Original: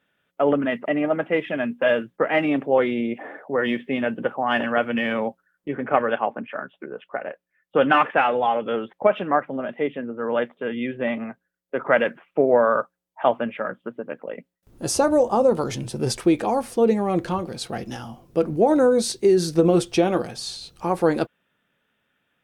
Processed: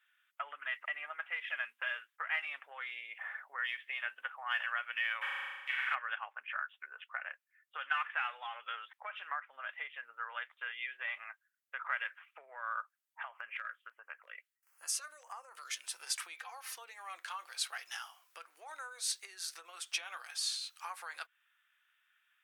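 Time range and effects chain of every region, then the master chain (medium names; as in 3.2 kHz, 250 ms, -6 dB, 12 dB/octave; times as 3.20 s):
5.21–5.93 s: formants flattened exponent 0.6 + band-pass filter 1.9 kHz, Q 0.7 + flutter echo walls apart 6.6 m, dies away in 1.2 s
13.23–15.84 s: compression, threshold -28 dBFS + LFO notch square 1.5 Hz 860–3700 Hz
16.36–16.76 s: peaking EQ 8.5 kHz -12.5 dB 0.37 oct + compression 2.5:1, threshold -32 dBFS + comb 3.9 ms, depth 95%
whole clip: compression, threshold -25 dBFS; high-pass 1.3 kHz 24 dB/octave; peaking EQ 4.5 kHz -3.5 dB 1.4 oct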